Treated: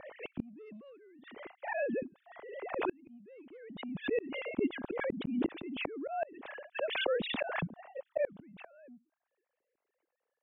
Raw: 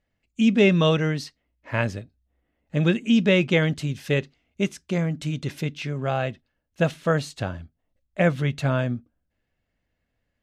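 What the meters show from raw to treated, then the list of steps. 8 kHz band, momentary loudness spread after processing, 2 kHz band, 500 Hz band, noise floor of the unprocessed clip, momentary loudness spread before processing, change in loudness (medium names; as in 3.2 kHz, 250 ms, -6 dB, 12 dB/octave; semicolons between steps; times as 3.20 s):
under -35 dB, 19 LU, -11.5 dB, -11.0 dB, -78 dBFS, 13 LU, -13.0 dB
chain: formants replaced by sine waves; gate -50 dBFS, range -7 dB; slow attack 348 ms; tilt shelf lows +8.5 dB, about 870 Hz; saturation -10.5 dBFS, distortion -18 dB; inverted gate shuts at -28 dBFS, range -40 dB; swell ahead of each attack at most 39 dB/s; trim +6 dB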